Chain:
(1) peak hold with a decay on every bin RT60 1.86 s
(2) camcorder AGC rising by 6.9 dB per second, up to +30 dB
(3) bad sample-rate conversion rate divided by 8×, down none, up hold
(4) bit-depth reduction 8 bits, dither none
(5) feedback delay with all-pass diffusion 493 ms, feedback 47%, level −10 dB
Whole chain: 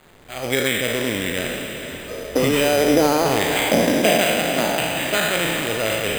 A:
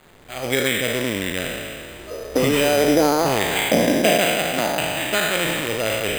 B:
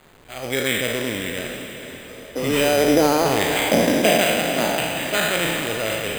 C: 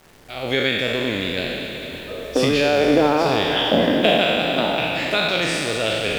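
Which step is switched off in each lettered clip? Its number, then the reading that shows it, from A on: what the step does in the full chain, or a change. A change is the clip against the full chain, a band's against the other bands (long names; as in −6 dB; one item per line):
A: 5, echo-to-direct ratio −9.0 dB to none audible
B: 2, change in momentary loudness spread +4 LU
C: 3, 8 kHz band −9.5 dB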